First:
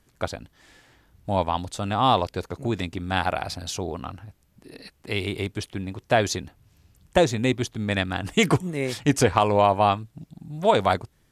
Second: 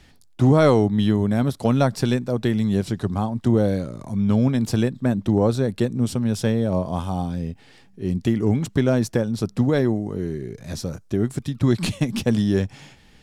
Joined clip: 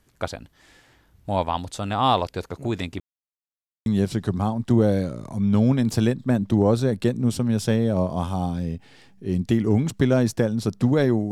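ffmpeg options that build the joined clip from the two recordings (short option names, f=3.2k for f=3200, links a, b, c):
-filter_complex "[0:a]apad=whole_dur=11.31,atrim=end=11.31,asplit=2[a][b];[a]atrim=end=3,asetpts=PTS-STARTPTS,afade=t=out:st=2.996:d=0.004:c=hsin[c];[b]atrim=start=3:end=3.86,asetpts=PTS-STARTPTS,volume=0[d];[1:a]atrim=start=2.62:end=10.07,asetpts=PTS-STARTPTS,afade=t=in:d=0.004:c=hsin[e];[c][d][e]concat=n=3:v=0:a=1"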